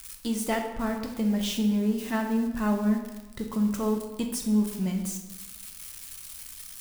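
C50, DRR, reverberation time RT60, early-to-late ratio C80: 6.0 dB, 2.5 dB, 1.1 s, 8.5 dB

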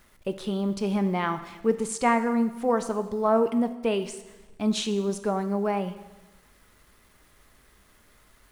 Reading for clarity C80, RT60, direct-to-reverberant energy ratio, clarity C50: 14.0 dB, 1.1 s, 9.5 dB, 12.0 dB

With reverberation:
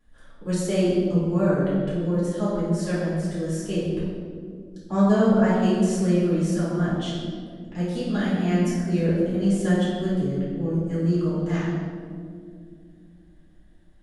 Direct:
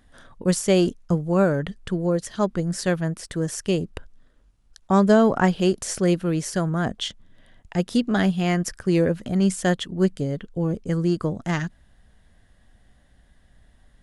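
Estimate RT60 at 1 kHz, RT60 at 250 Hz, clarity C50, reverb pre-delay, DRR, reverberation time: 1.7 s, 4.0 s, −2.0 dB, 3 ms, −11.5 dB, 2.3 s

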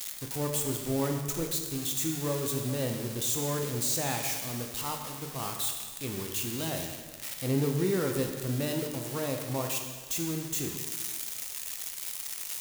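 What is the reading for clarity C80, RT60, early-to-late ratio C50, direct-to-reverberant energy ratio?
6.0 dB, 1.6 s, 5.0 dB, 2.5 dB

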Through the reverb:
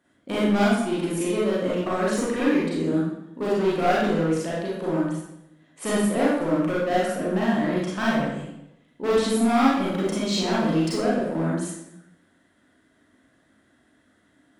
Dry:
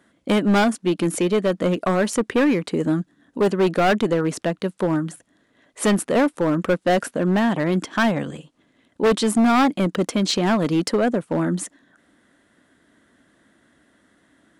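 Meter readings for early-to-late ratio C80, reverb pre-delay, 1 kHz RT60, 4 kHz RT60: 3.0 dB, 31 ms, 0.80 s, 0.70 s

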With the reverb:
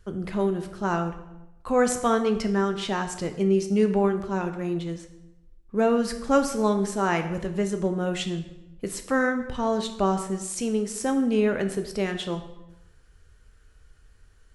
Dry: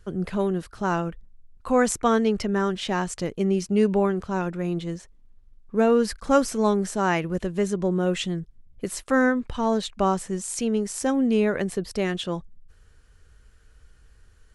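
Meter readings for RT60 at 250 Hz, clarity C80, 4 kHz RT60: 1.1 s, 12.5 dB, 0.75 s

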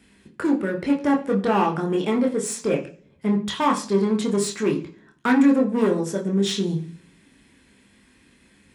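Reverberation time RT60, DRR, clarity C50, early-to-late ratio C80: 0.45 s, 0.0 dB, 12.0 dB, 16.5 dB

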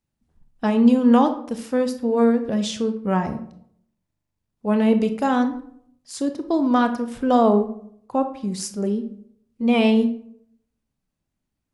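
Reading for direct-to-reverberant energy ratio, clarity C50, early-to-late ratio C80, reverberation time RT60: 8.0 dB, 11.5 dB, 15.0 dB, 0.65 s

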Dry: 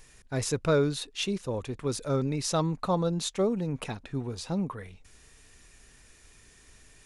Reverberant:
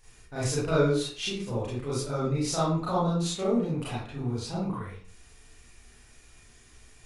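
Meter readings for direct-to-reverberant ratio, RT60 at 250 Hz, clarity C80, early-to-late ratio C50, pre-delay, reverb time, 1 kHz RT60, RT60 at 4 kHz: −9.5 dB, 0.50 s, 5.5 dB, 0.0 dB, 29 ms, 0.50 s, 0.45 s, 0.35 s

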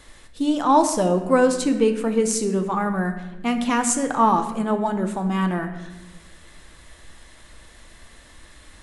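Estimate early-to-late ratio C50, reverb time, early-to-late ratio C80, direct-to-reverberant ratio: 9.0 dB, 1.1 s, 10.5 dB, 6.0 dB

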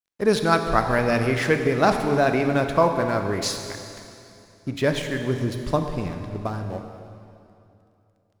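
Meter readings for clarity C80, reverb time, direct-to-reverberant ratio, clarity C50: 7.0 dB, 2.7 s, 5.5 dB, 6.5 dB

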